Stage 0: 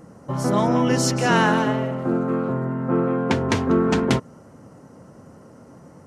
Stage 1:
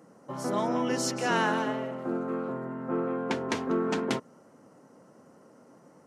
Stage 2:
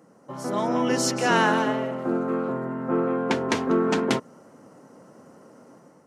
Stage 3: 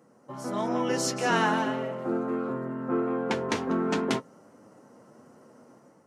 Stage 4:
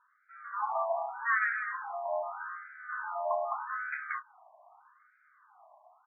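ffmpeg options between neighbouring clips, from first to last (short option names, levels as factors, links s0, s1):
-af "highpass=230,volume=0.422"
-af "dynaudnorm=f=440:g=3:m=2"
-af "flanger=delay=8.2:depth=2.3:regen=-45:speed=0.37:shape=sinusoidal"
-filter_complex "[0:a]asplit=2[s0][s1];[s1]adelay=27,volume=0.282[s2];[s0][s2]amix=inputs=2:normalize=0,highpass=f=230:t=q:w=0.5412,highpass=f=230:t=q:w=1.307,lowpass=f=2400:t=q:w=0.5176,lowpass=f=2400:t=q:w=0.7071,lowpass=f=2400:t=q:w=1.932,afreqshift=170,afftfilt=real='re*between(b*sr/1024,810*pow(1800/810,0.5+0.5*sin(2*PI*0.82*pts/sr))/1.41,810*pow(1800/810,0.5+0.5*sin(2*PI*0.82*pts/sr))*1.41)':imag='im*between(b*sr/1024,810*pow(1800/810,0.5+0.5*sin(2*PI*0.82*pts/sr))/1.41,810*pow(1800/810,0.5+0.5*sin(2*PI*0.82*pts/sr))*1.41)':win_size=1024:overlap=0.75"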